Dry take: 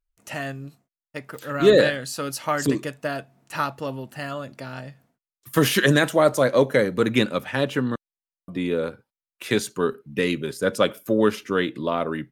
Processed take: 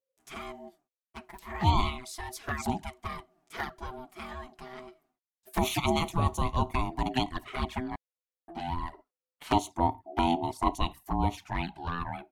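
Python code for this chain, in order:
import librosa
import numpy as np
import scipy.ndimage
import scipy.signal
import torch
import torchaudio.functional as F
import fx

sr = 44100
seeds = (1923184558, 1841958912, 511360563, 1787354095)

y = x * np.sin(2.0 * np.pi * 510.0 * np.arange(len(x)) / sr)
y = fx.spec_box(y, sr, start_s=8.93, length_s=1.81, low_hz=220.0, high_hz=1400.0, gain_db=8)
y = fx.env_flanger(y, sr, rest_ms=9.3, full_db=-19.5)
y = F.gain(torch.from_numpy(y), -4.0).numpy()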